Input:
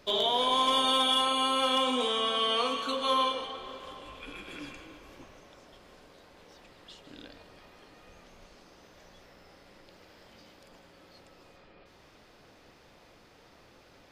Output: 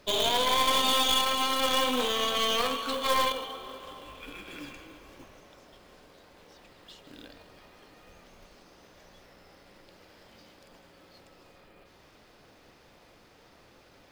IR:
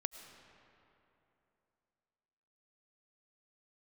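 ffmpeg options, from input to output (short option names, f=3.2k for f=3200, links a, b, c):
-af "acrusher=bits=4:mode=log:mix=0:aa=0.000001,aeval=exprs='0.141*(cos(1*acos(clip(val(0)/0.141,-1,1)))-cos(1*PI/2))+0.0501*(cos(4*acos(clip(val(0)/0.141,-1,1)))-cos(4*PI/2))+0.0178*(cos(6*acos(clip(val(0)/0.141,-1,1)))-cos(6*PI/2))':c=same"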